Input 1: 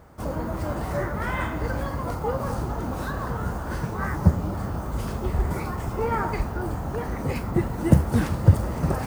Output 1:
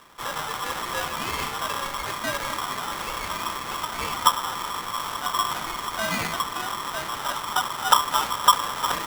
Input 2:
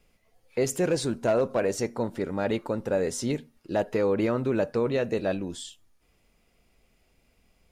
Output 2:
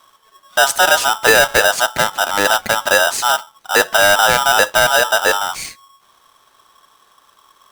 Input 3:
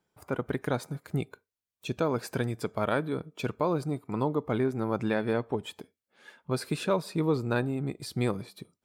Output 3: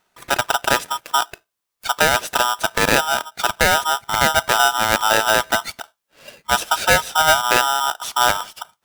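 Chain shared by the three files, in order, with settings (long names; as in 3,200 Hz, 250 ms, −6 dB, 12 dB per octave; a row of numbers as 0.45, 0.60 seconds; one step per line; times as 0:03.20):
ring modulator with a square carrier 1,100 Hz
normalise the peak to −3 dBFS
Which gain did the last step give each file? −2.0, +12.5, +11.5 decibels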